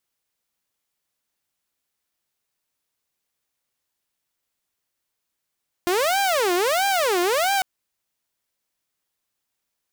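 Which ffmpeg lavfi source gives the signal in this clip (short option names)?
-f lavfi -i "aevalsrc='0.158*(2*mod((573*t-224/(2*PI*1.5)*sin(2*PI*1.5*t)),1)-1)':d=1.75:s=44100"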